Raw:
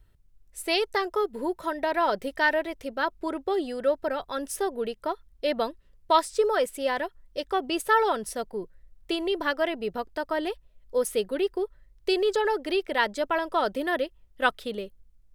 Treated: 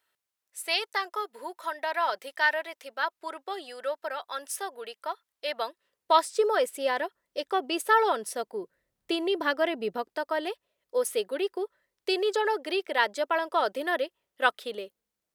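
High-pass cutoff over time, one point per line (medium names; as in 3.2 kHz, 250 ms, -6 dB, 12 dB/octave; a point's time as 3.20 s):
5.52 s 830 Hz
6.35 s 320 Hz
8.53 s 320 Hz
9.17 s 150 Hz
9.77 s 150 Hz
10.26 s 400 Hz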